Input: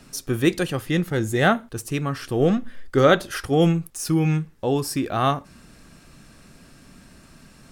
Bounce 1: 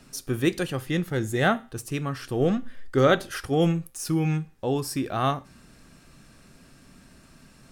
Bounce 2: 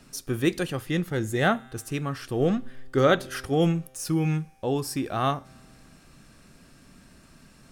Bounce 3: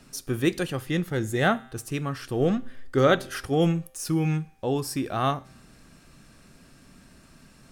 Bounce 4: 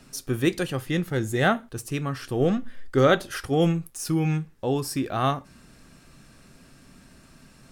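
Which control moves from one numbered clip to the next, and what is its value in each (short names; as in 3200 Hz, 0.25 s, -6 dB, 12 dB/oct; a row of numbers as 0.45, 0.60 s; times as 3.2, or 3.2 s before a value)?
resonator, decay: 0.43, 2.2, 0.9, 0.2 s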